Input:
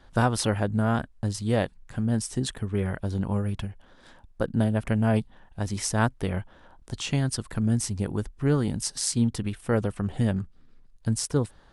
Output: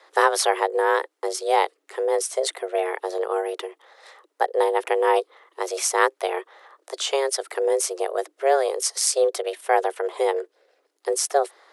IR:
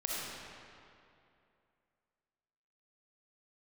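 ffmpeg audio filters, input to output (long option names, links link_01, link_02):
-af "highpass=190,afreqshift=270,volume=6dB"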